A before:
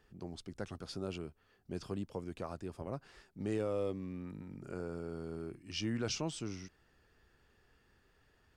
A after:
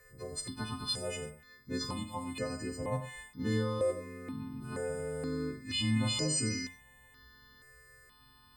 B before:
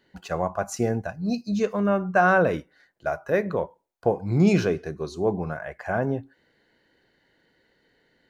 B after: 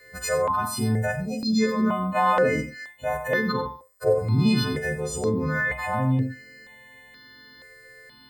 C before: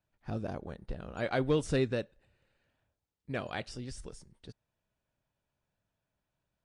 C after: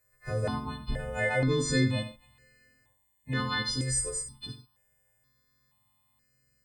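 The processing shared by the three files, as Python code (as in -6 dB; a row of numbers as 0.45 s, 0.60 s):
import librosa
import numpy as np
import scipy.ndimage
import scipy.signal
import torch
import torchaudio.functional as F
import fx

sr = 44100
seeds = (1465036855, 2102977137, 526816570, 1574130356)

p1 = fx.freq_snap(x, sr, grid_st=3)
p2 = fx.ripple_eq(p1, sr, per_octave=1.0, db=11)
p3 = fx.over_compress(p2, sr, threshold_db=-35.0, ratio=-1.0)
p4 = p2 + F.gain(torch.from_numpy(p3), 0.5).numpy()
p5 = fx.echo_multitap(p4, sr, ms=(46, 91, 131), db=(-11.0, -12.0, -20.0))
y = fx.phaser_held(p5, sr, hz=2.1, low_hz=900.0, high_hz=3500.0)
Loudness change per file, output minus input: +6.0 LU, +0.5 LU, +5.0 LU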